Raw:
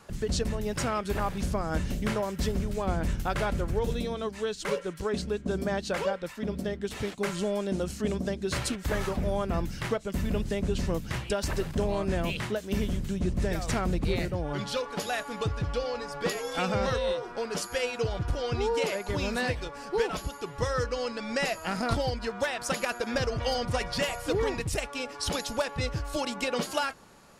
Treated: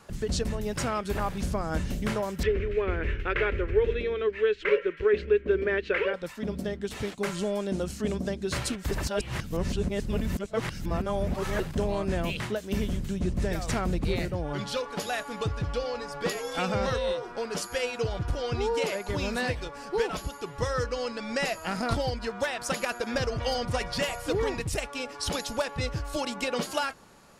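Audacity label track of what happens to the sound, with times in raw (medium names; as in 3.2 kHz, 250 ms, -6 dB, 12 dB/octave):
2.430000	6.140000	FFT filter 100 Hz 0 dB, 140 Hz -13 dB, 280 Hz -5 dB, 410 Hz +10 dB, 750 Hz -11 dB, 1.8 kHz +9 dB, 2.5 kHz +9 dB, 4.6 kHz -13 dB, 9.8 kHz -29 dB
8.910000	11.600000	reverse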